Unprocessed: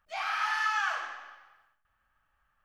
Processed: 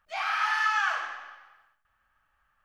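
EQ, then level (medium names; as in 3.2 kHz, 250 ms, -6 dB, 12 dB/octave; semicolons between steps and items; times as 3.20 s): peaking EQ 1.7 kHz +3.5 dB 2.8 oct; 0.0 dB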